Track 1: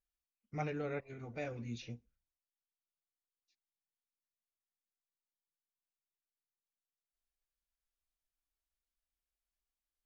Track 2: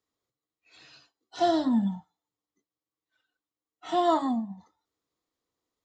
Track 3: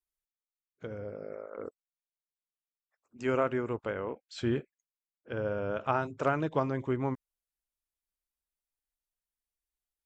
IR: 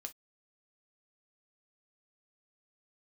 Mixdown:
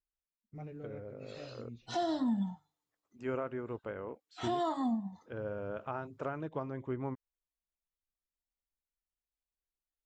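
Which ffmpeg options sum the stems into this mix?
-filter_complex "[0:a]lowpass=2800,equalizer=f=1700:t=o:w=2.8:g=-13.5,volume=0.631[s0];[1:a]bandreject=f=50:t=h:w=6,bandreject=f=100:t=h:w=6,bandreject=f=150:t=h:w=6,adelay=550,volume=0.891[s1];[2:a]highshelf=f=3200:g=-11,volume=0.501[s2];[s0][s1][s2]amix=inputs=3:normalize=0,alimiter=level_in=1.12:limit=0.0631:level=0:latency=1:release=337,volume=0.891"

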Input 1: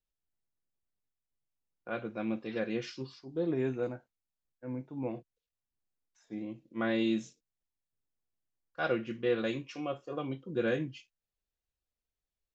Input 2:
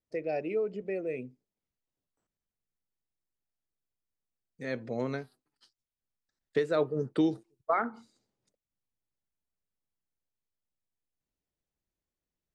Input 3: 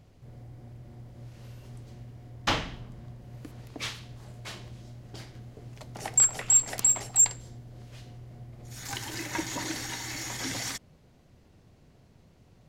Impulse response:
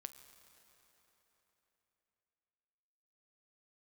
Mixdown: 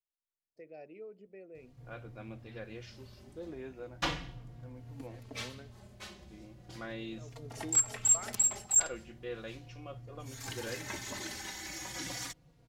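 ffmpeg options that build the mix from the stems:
-filter_complex "[0:a]lowshelf=f=260:g=-11.5,volume=0.376,asplit=2[s0][s1];[1:a]adelay=450,volume=0.141[s2];[2:a]asplit=2[s3][s4];[s4]adelay=3.7,afreqshift=-0.37[s5];[s3][s5]amix=inputs=2:normalize=1,adelay=1550,volume=0.708[s6];[s1]apad=whole_len=573264[s7];[s2][s7]sidechaincompress=threshold=0.00178:ratio=8:attack=16:release=285[s8];[s0][s8][s6]amix=inputs=3:normalize=0"

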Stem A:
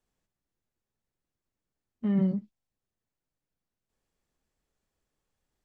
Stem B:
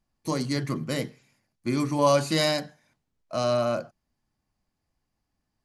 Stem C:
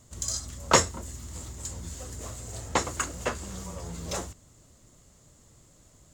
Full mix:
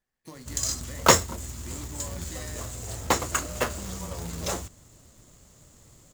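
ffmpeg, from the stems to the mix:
-filter_complex "[0:a]highpass=370,volume=0.531[s0];[1:a]acontrast=88,volume=0.112[s1];[2:a]adelay=350,volume=1.33[s2];[s0][s1]amix=inputs=2:normalize=0,equalizer=f=1800:t=o:w=0.35:g=10.5,acompressor=threshold=0.00794:ratio=6,volume=1[s3];[s2][s3]amix=inputs=2:normalize=0,acrusher=bits=2:mode=log:mix=0:aa=0.000001"

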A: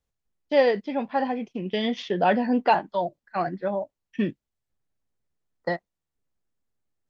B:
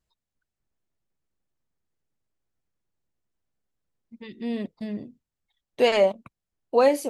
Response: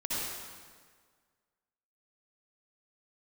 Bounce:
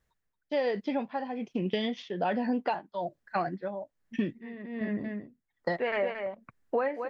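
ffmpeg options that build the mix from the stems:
-filter_complex "[0:a]volume=1.41,asplit=2[s0][s1];[1:a]lowpass=f=1800:t=q:w=3.5,volume=1.12,asplit=2[s2][s3];[s3]volume=0.631[s4];[s1]apad=whole_len=312985[s5];[s2][s5]sidechaincompress=threshold=0.0282:ratio=8:attack=6.3:release=371[s6];[s4]aecho=0:1:226:1[s7];[s0][s6][s7]amix=inputs=3:normalize=0,tremolo=f=1.2:d=0.78,acompressor=threshold=0.0501:ratio=6"

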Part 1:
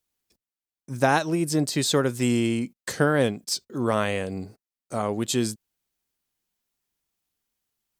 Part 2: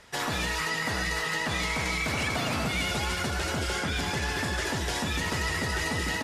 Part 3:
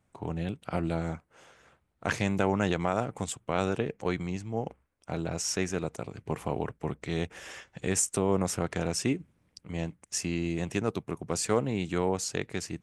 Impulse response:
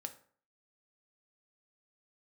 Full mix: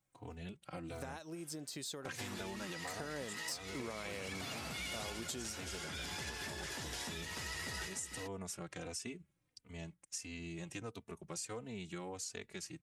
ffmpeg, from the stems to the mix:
-filter_complex "[0:a]equalizer=f=500:t=o:w=2.9:g=4.5,acompressor=threshold=0.0891:ratio=6,volume=0.316,afade=t=in:st=2.8:d=0.4:silence=0.281838[s0];[1:a]adelay=2050,volume=0.841[s1];[2:a]asplit=2[s2][s3];[s3]adelay=3.2,afreqshift=-1.5[s4];[s2][s4]amix=inputs=2:normalize=1,volume=0.282,asplit=2[s5][s6];[s6]apad=whole_len=365220[s7];[s1][s7]sidechaincompress=threshold=0.00224:ratio=12:attack=40:release=949[s8];[s0][s8][s5]amix=inputs=3:normalize=0,highshelf=f=2200:g=9,acompressor=threshold=0.01:ratio=6"

